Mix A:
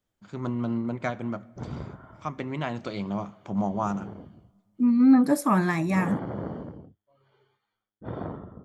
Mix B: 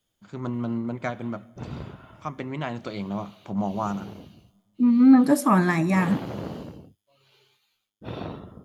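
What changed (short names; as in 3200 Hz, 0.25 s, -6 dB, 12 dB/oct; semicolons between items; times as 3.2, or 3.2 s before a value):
second voice: send on; background: remove polynomial smoothing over 41 samples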